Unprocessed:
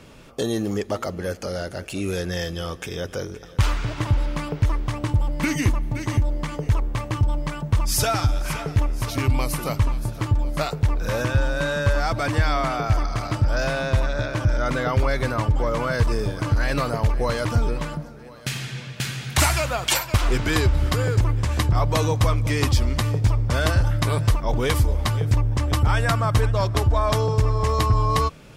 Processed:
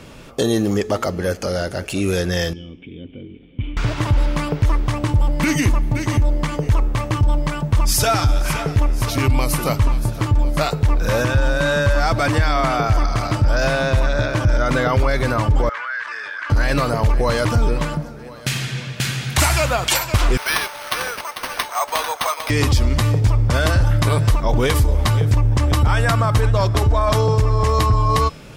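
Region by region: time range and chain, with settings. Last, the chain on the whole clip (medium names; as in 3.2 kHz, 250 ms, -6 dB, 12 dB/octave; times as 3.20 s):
2.53–3.77 s: one-bit delta coder 64 kbps, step -36 dBFS + cascade formant filter i
15.69–16.50 s: ladder band-pass 1.8 kHz, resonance 65% + level flattener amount 70%
20.37–22.50 s: high-pass 690 Hz 24 dB/octave + delay 446 ms -10.5 dB + careless resampling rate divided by 6×, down none, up hold
whole clip: de-hum 428 Hz, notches 20; peak limiter -14.5 dBFS; trim +6.5 dB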